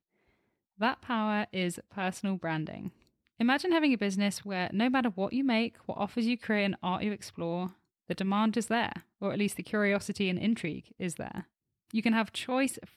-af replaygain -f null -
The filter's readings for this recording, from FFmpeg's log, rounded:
track_gain = +10.8 dB
track_peak = 0.143